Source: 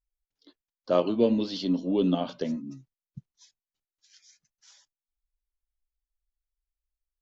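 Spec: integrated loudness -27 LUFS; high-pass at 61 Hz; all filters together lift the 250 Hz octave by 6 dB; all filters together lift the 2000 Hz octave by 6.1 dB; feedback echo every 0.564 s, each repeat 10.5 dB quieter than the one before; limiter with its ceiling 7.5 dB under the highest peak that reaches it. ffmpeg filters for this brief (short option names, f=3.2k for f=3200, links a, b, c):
-af "highpass=61,equalizer=f=250:t=o:g=7,equalizer=f=2k:t=o:g=8.5,alimiter=limit=-13.5dB:level=0:latency=1,aecho=1:1:564|1128|1692:0.299|0.0896|0.0269,volume=-2.5dB"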